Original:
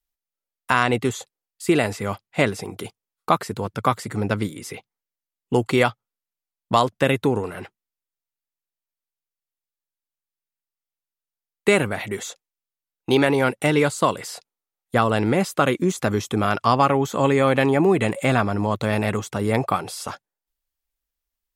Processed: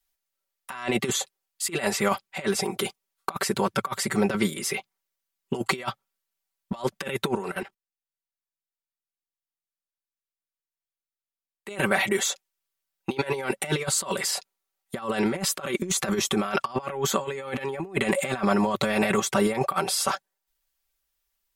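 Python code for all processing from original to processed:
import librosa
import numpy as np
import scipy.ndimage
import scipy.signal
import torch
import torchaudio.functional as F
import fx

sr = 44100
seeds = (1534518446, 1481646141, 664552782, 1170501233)

y = fx.chain(x, sr, fx.low_shelf(hz=110.0, db=3.0),
    fx.level_steps(step_db=17), at=(7.35, 11.76))
y = fx.low_shelf(y, sr, hz=390.0, db=-8.5)
y = y + 0.91 * np.pad(y, (int(5.2 * sr / 1000.0), 0))[:len(y)]
y = fx.over_compress(y, sr, threshold_db=-25.0, ratio=-0.5)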